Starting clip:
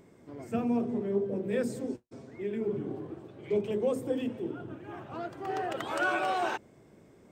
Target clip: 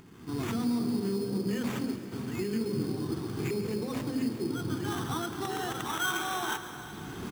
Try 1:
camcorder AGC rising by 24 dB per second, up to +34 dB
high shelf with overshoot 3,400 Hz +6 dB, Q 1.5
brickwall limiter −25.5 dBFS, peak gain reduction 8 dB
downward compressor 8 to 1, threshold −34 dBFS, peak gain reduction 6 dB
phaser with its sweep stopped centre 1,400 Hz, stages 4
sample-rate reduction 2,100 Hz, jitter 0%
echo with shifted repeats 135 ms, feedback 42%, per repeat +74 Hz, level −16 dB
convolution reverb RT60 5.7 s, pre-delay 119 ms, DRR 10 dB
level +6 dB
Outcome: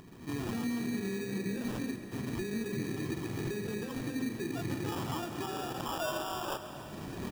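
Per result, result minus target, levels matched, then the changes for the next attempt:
downward compressor: peak gain reduction +6 dB; sample-rate reduction: distortion +5 dB
remove: downward compressor 8 to 1, threshold −34 dBFS, peak gain reduction 6 dB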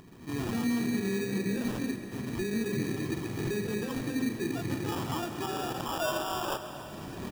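sample-rate reduction: distortion +5 dB
change: sample-rate reduction 4,700 Hz, jitter 0%

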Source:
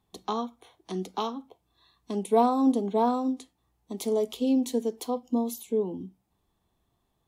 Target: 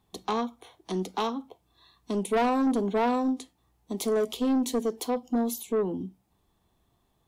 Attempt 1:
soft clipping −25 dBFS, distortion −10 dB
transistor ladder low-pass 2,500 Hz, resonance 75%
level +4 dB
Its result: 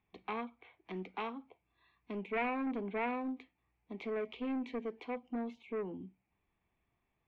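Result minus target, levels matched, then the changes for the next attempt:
2,000 Hz band +8.5 dB
remove: transistor ladder low-pass 2,500 Hz, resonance 75%

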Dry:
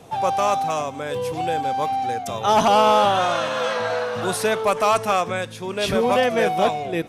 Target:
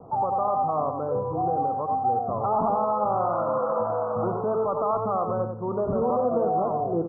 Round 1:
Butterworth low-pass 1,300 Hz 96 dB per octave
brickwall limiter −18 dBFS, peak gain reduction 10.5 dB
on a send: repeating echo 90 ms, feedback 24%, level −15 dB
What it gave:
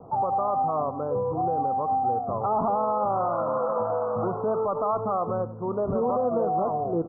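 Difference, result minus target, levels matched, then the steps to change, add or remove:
echo-to-direct −9 dB
change: repeating echo 90 ms, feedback 24%, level −6 dB

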